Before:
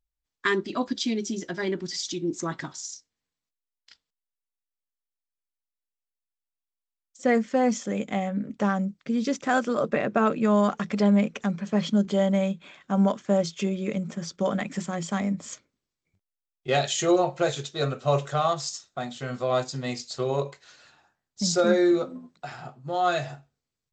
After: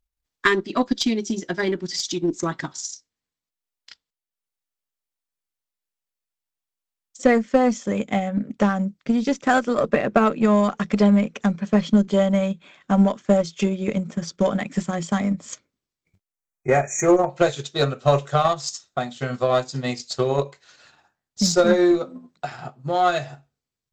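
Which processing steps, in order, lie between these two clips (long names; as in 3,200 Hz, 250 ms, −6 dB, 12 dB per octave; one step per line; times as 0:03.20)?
time-frequency box erased 0:16.31–0:17.29, 2,500–5,600 Hz
transient designer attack +5 dB, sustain −5 dB
in parallel at −4.5 dB: asymmetric clip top −24 dBFS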